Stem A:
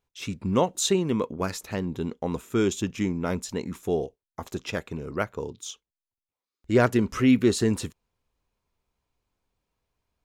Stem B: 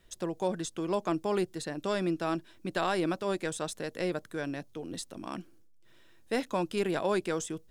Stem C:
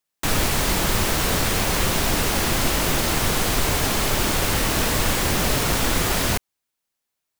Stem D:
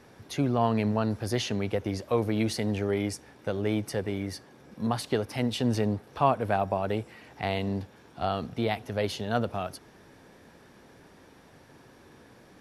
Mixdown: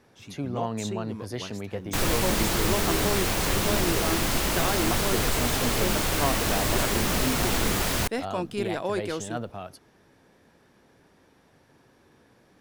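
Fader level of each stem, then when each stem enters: −12.5, 0.0, −4.5, −5.5 decibels; 0.00, 1.80, 1.70, 0.00 seconds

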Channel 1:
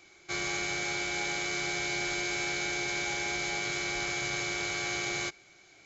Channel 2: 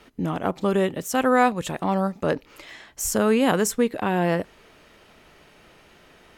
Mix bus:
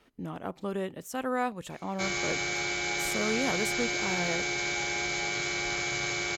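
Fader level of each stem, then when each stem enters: +1.5, −11.5 decibels; 1.70, 0.00 seconds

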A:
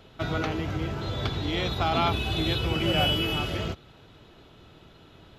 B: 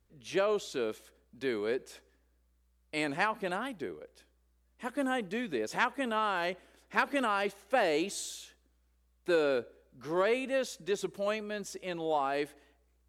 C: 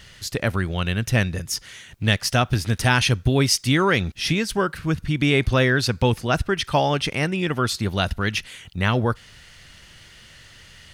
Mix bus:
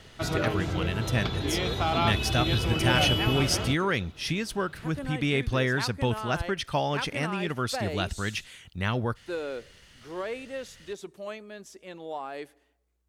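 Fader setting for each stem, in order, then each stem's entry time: −1.0, −5.5, −7.5 decibels; 0.00, 0.00, 0.00 seconds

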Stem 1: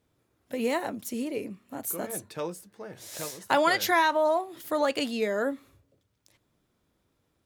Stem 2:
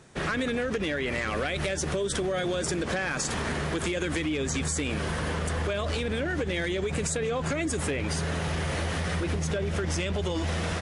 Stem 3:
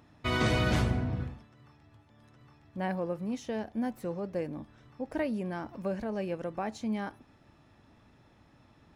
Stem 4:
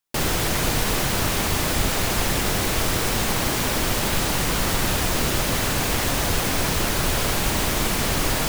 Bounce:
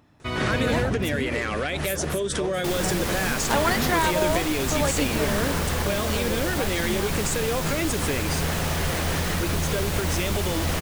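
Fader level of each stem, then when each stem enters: −1.0, +2.0, +0.5, −7.0 decibels; 0.00, 0.20, 0.00, 2.50 seconds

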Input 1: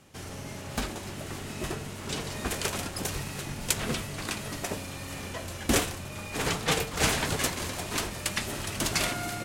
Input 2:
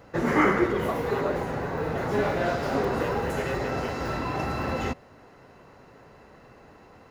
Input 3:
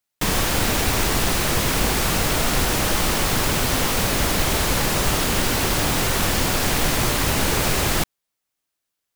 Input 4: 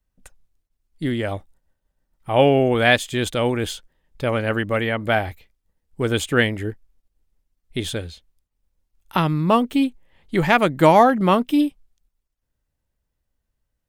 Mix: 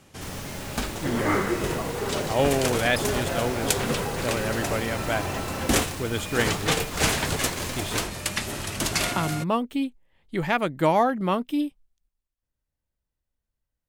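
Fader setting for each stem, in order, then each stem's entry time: +2.5, −3.5, −18.5, −7.5 decibels; 0.00, 0.90, 0.00, 0.00 seconds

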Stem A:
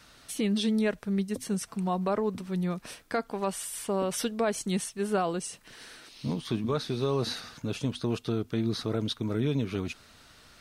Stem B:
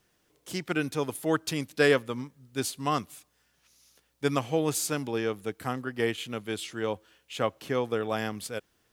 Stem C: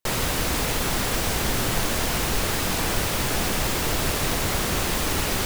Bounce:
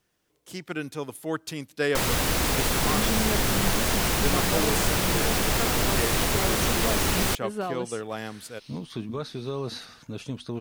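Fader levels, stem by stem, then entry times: −3.5, −3.5, 0.0 decibels; 2.45, 0.00, 1.90 seconds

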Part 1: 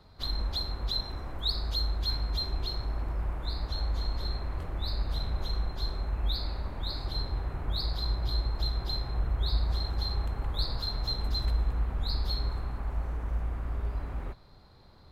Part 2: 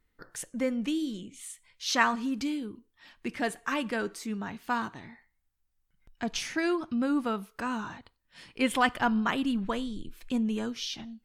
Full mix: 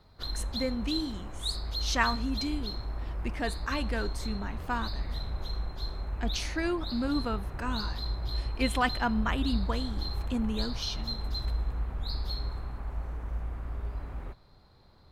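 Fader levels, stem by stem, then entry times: −3.0, −2.5 decibels; 0.00, 0.00 seconds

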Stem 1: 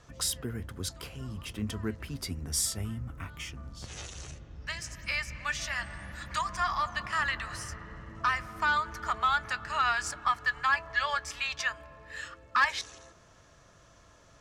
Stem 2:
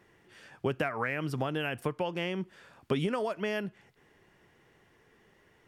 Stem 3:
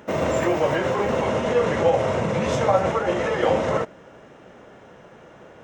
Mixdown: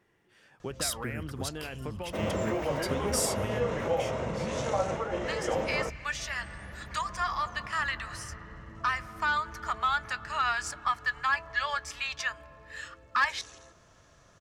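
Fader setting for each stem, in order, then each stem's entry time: −1.0, −7.0, −10.0 decibels; 0.60, 0.00, 2.05 seconds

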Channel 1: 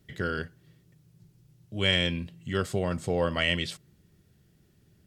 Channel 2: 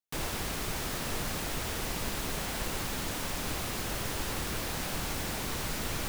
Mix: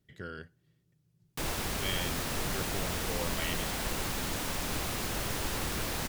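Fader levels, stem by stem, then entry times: −11.5, +0.5 decibels; 0.00, 1.25 seconds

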